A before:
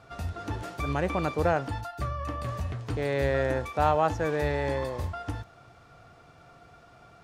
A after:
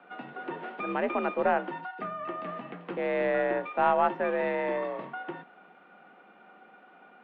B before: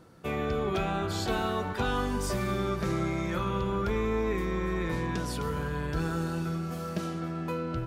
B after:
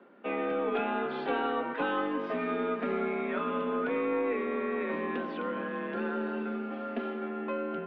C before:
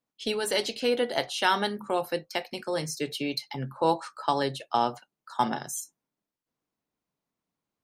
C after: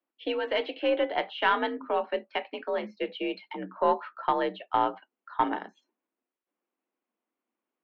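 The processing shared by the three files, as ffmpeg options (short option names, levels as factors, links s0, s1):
-af "highpass=f=170:t=q:w=0.5412,highpass=f=170:t=q:w=1.307,lowpass=f=3000:t=q:w=0.5176,lowpass=f=3000:t=q:w=0.7071,lowpass=f=3000:t=q:w=1.932,afreqshift=54,aeval=exprs='0.316*(cos(1*acos(clip(val(0)/0.316,-1,1)))-cos(1*PI/2))+0.0282*(cos(2*acos(clip(val(0)/0.316,-1,1)))-cos(2*PI/2))':c=same"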